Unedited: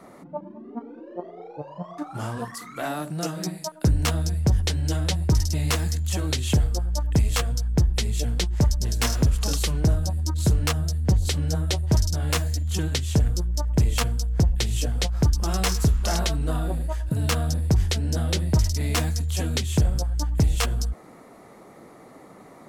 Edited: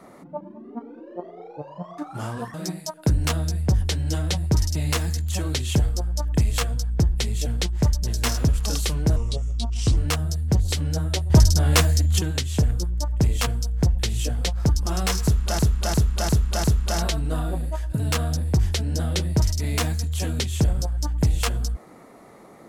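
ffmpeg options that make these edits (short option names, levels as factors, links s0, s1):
-filter_complex "[0:a]asplit=10[s0][s1][s2][s3][s4][s5][s6][s7][s8][s9];[s0]atrim=end=2.542[s10];[s1]atrim=start=3.318:end=9.944[s11];[s2]atrim=start=9.94:end=10.54,asetpts=PTS-STARTPTS,asetrate=32634,aresample=44100[s12];[s3]atrim=start=10.536:end=11.872[s13];[s4]atrim=start=11.868:end=12.762,asetpts=PTS-STARTPTS,volume=2.11[s14];[s5]atrim=start=12.758:end=16.162[s15];[s6]atrim=start=15.808:end=16.162[s16];[s7]atrim=start=15.808:end=16.162[s17];[s8]atrim=start=15.808:end=16.162[s18];[s9]atrim=start=15.808[s19];[s10][s11]acrossfade=d=0.004:c1=hsin:c2=hsin[s20];[s20][s12]acrossfade=d=0.004:c1=hsin:c2=hsin[s21];[s21][s13]acrossfade=d=0.004:c1=hsin:c2=hsin[s22];[s22][s14]acrossfade=d=0.004:c1=hsin:c2=hsin[s23];[s23][s15]acrossfade=d=0.004:c1=hsin:c2=hsin[s24];[s24][s16]acrossfade=d=0.004:c1=hsin:c2=hsin[s25];[s25][s17]acrossfade=d=0.004:c1=hsin:c2=hsin[s26];[s26][s18]acrossfade=d=0.004:c1=hsin:c2=hsin[s27];[s27][s19]acrossfade=d=0.004:c1=hsin:c2=hsin"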